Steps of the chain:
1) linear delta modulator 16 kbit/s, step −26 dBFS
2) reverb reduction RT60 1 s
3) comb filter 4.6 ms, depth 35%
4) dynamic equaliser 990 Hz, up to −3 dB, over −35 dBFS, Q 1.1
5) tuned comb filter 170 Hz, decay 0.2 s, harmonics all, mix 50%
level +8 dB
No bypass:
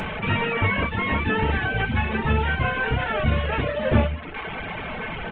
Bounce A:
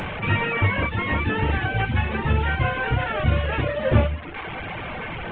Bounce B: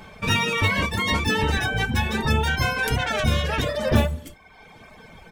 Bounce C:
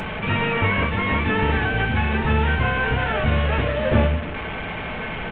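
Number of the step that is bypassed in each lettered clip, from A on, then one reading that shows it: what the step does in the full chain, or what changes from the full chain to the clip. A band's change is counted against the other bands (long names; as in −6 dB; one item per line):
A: 3, 125 Hz band +3.0 dB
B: 1, 4 kHz band +7.0 dB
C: 2, change in crest factor −2.5 dB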